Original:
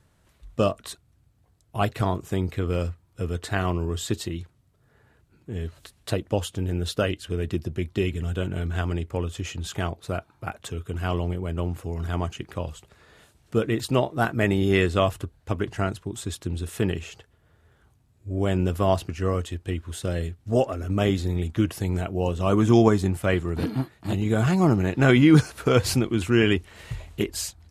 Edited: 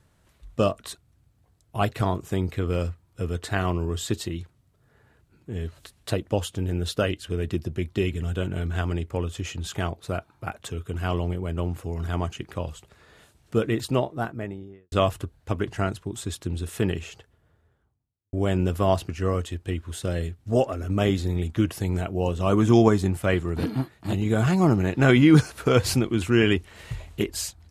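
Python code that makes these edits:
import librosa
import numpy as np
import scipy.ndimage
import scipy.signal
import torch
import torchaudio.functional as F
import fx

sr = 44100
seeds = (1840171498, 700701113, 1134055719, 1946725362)

y = fx.studio_fade_out(x, sr, start_s=13.66, length_s=1.26)
y = fx.studio_fade_out(y, sr, start_s=17.04, length_s=1.29)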